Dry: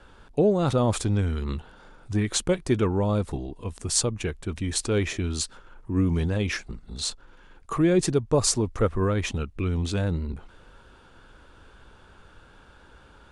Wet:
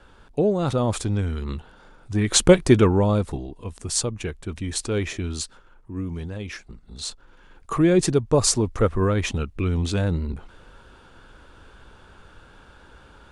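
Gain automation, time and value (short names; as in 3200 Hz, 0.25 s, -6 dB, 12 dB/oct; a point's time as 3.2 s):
2.12 s 0 dB
2.46 s +11 dB
3.51 s -0.5 dB
5.32 s -0.5 dB
5.97 s -7 dB
6.48 s -7 dB
7.75 s +3 dB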